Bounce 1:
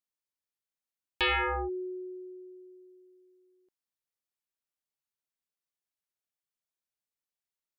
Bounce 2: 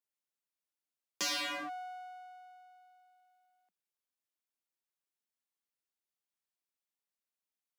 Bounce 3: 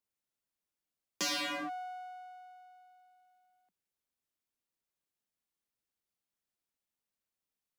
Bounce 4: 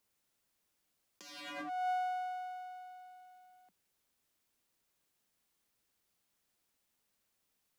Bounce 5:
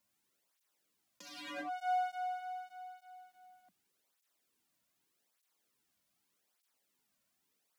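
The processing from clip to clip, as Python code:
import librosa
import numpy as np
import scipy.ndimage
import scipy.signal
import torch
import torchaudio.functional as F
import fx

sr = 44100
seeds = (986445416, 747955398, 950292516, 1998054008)

y1 = np.abs(x)
y1 = scipy.signal.sosfilt(scipy.signal.butter(16, 170.0, 'highpass', fs=sr, output='sos'), y1)
y2 = fx.low_shelf(y1, sr, hz=390.0, db=8.0)
y3 = fx.over_compress(y2, sr, threshold_db=-43.0, ratio=-0.5)
y3 = F.gain(torch.from_numpy(y3), 5.5).numpy()
y4 = fx.flanger_cancel(y3, sr, hz=0.83, depth_ms=2.6)
y4 = F.gain(torch.from_numpy(y4), 3.0).numpy()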